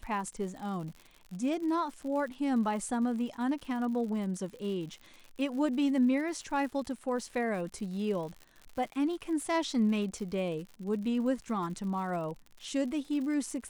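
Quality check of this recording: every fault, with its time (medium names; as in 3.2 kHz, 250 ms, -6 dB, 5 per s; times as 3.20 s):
crackle 97 per s -40 dBFS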